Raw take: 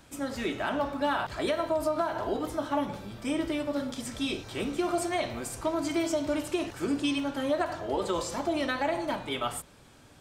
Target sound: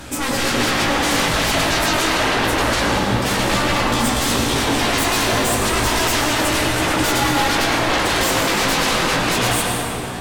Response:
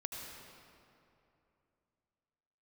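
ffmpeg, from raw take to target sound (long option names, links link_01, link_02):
-filter_complex "[0:a]aeval=exprs='0.158*sin(PI/2*10*val(0)/0.158)':channel_layout=same,flanger=delay=16:depth=2.8:speed=0.3,bandreject=frequency=50:width_type=h:width=6,bandreject=frequency=100:width_type=h:width=6[link_01];[1:a]atrim=start_sample=2205,asetrate=32634,aresample=44100[link_02];[link_01][link_02]afir=irnorm=-1:irlink=0,volume=2.5dB"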